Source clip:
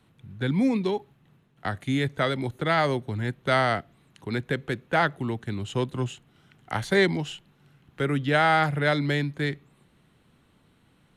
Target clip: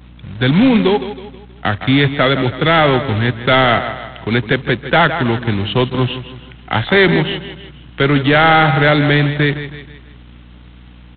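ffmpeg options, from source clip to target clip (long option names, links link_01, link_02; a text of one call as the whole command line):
ffmpeg -i in.wav -af "aemphasis=mode=production:type=75fm,aecho=1:1:160|320|480|640:0.237|0.0996|0.0418|0.0176,adynamicequalizer=threshold=0.00891:dfrequency=3100:dqfactor=1.6:tfrequency=3100:tqfactor=1.6:attack=5:release=100:ratio=0.375:range=2.5:mode=cutabove:tftype=bell,apsyclip=18dB,aeval=exprs='val(0)+0.02*(sin(2*PI*60*n/s)+sin(2*PI*2*60*n/s)/2+sin(2*PI*3*60*n/s)/3+sin(2*PI*4*60*n/s)/4+sin(2*PI*5*60*n/s)/5)':channel_layout=same,aresample=8000,acrusher=bits=3:mode=log:mix=0:aa=0.000001,aresample=44100,volume=-4.5dB" out.wav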